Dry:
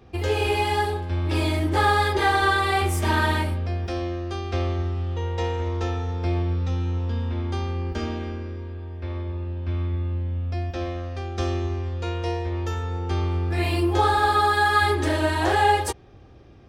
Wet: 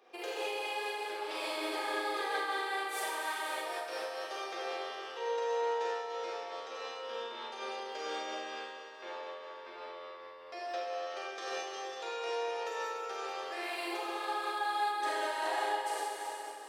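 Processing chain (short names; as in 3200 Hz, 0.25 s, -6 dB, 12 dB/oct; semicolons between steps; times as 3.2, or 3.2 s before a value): HPF 440 Hz 24 dB/oct; compressor 5:1, threshold -34 dBFS, peak gain reduction 17 dB; Schroeder reverb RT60 3.4 s, combs from 32 ms, DRR -6.5 dB; noise-modulated level, depth 55%; gain -4 dB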